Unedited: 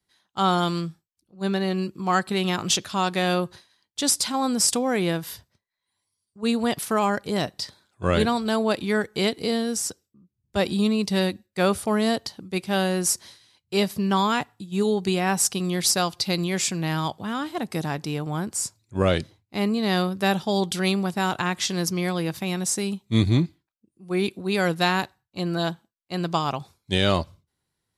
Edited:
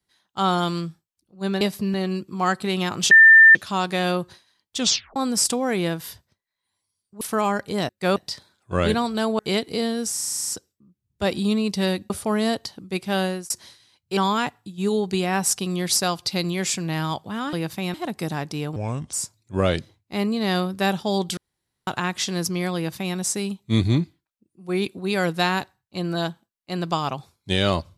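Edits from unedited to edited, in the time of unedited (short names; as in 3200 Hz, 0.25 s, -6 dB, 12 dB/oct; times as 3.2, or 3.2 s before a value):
2.78 add tone 1790 Hz -6.5 dBFS 0.44 s
4 tape stop 0.39 s
6.44–6.79 cut
8.7–9.09 cut
9.83 stutter 0.04 s, 10 plays
11.44–11.71 move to 7.47
12.86–13.11 fade out
13.78–14.11 move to 1.61
18.29–18.55 speed 70%
20.79–21.29 room tone
22.17–22.58 copy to 17.47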